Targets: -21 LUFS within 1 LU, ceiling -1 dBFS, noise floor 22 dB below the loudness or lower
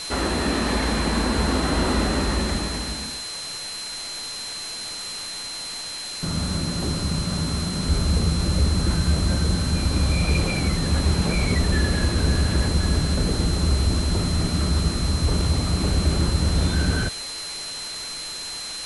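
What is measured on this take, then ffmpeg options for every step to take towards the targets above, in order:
steady tone 4100 Hz; tone level -32 dBFS; noise floor -33 dBFS; noise floor target -46 dBFS; loudness -23.5 LUFS; peak -9.5 dBFS; loudness target -21.0 LUFS
-> -af "bandreject=f=4.1k:w=30"
-af "afftdn=nr=13:nf=-33"
-af "volume=2.5dB"

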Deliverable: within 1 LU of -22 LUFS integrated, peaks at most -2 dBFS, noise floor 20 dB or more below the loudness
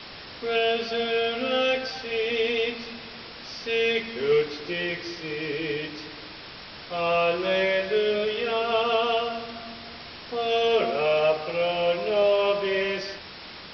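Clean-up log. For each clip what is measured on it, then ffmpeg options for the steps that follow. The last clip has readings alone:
noise floor -42 dBFS; noise floor target -45 dBFS; loudness -25.0 LUFS; peak -11.0 dBFS; loudness target -22.0 LUFS
-> -af "afftdn=nr=6:nf=-42"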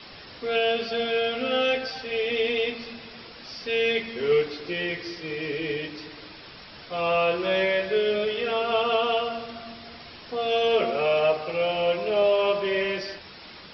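noise floor -45 dBFS; loudness -25.0 LUFS; peak -11.0 dBFS; loudness target -22.0 LUFS
-> -af "volume=3dB"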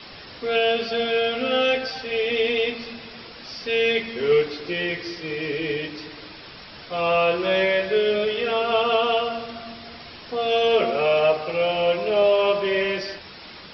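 loudness -22.0 LUFS; peak -8.0 dBFS; noise floor -42 dBFS

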